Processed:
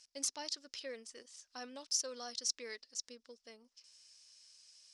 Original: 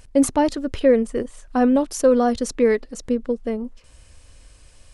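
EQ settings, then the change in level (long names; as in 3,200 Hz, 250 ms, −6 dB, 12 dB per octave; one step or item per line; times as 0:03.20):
resonant band-pass 5,300 Hz, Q 4.3
+3.0 dB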